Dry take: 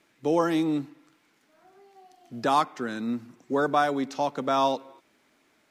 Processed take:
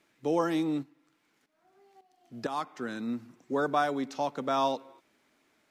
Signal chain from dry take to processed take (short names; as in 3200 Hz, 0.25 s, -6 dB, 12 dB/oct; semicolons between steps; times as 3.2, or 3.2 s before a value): 0.82–2.82 tremolo saw up 1.3 Hz -> 2.7 Hz, depth 75%; gain -4 dB